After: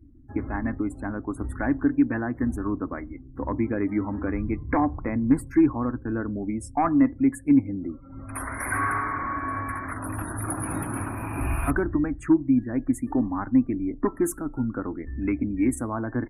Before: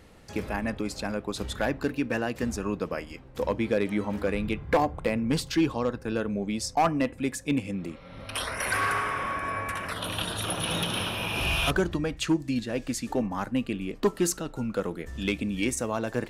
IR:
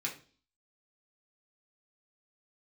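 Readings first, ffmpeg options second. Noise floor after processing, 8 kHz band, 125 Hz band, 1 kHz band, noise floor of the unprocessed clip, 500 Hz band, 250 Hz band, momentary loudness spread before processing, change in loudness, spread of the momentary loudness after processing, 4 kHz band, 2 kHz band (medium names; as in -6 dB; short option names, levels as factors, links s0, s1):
-45 dBFS, -3.5 dB, +2.5 dB, +0.5 dB, -47 dBFS, -2.5 dB, +6.0 dB, 7 LU, +2.5 dB, 11 LU, under -30 dB, -2.0 dB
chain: -af "firequalizer=gain_entry='entry(120,0);entry(180,-12);entry(270,6);entry(470,-14);entry(720,-6);entry(1100,-3);entry(2100,-7);entry(3000,-30);entry(9600,-4)':delay=0.05:min_phase=1,afftdn=nr=33:nf=-49,volume=1.78"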